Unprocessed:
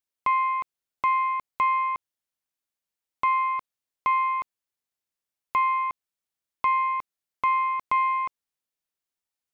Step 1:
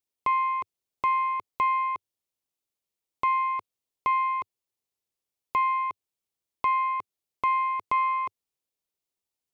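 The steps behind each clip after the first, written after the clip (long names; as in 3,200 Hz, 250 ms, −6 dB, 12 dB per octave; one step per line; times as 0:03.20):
graphic EQ with 15 bands 100 Hz +4 dB, 400 Hz +5 dB, 1,600 Hz −7 dB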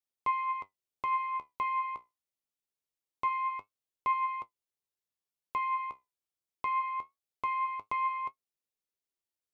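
flanger 0.24 Hz, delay 7.3 ms, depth 9.3 ms, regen +57%
level −2.5 dB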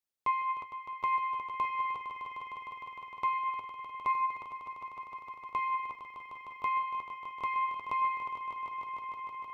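echo that builds up and dies away 153 ms, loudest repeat 5, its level −11 dB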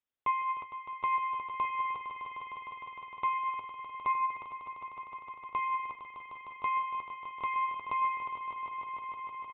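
downsampling to 8,000 Hz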